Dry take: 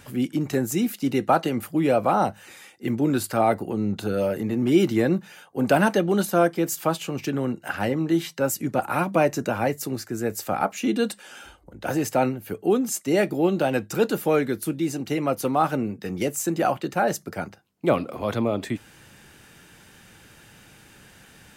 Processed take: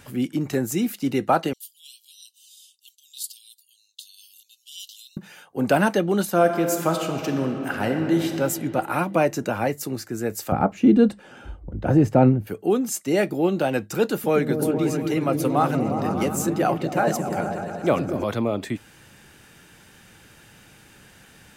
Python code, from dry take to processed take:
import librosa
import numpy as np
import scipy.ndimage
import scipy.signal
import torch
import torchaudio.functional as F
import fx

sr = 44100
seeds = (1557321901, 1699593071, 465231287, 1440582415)

y = fx.steep_highpass(x, sr, hz=3000.0, slope=96, at=(1.53, 5.17))
y = fx.reverb_throw(y, sr, start_s=6.31, length_s=2.06, rt60_s=2.9, drr_db=4.0)
y = fx.tilt_eq(y, sr, slope=-4.5, at=(10.52, 12.47))
y = fx.echo_opening(y, sr, ms=118, hz=200, octaves=1, feedback_pct=70, wet_db=0, at=(14.12, 18.24))